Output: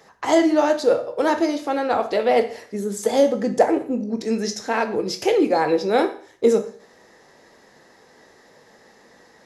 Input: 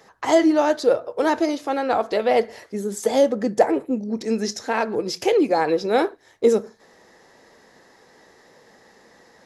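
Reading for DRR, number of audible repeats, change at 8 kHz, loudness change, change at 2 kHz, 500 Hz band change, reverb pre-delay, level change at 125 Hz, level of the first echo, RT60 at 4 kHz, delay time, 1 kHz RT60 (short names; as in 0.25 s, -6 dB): 7.5 dB, none, +0.5 dB, +0.5 dB, +0.5 dB, +0.5 dB, 15 ms, +1.0 dB, none, 0.50 s, none, 0.50 s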